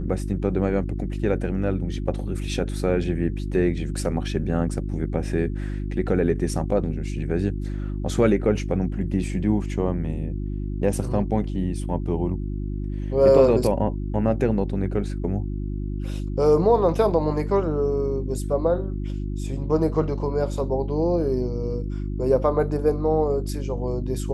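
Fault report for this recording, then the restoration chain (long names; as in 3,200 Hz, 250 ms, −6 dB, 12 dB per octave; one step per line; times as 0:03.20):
mains hum 50 Hz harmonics 7 −28 dBFS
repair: hum removal 50 Hz, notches 7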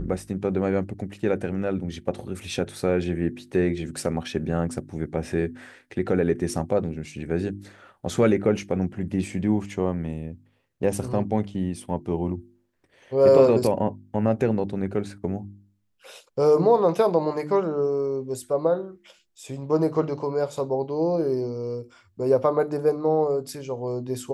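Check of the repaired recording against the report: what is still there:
none of them is left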